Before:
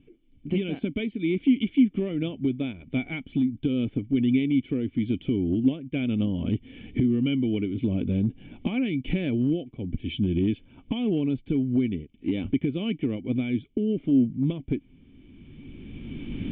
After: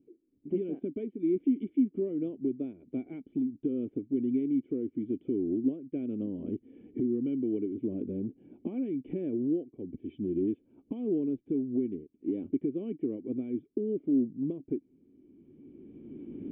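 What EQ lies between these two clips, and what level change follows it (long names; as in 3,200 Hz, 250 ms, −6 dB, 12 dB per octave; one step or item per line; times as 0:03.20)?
resonant band-pass 370 Hz, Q 2.5
high-frequency loss of the air 190 metres
0.0 dB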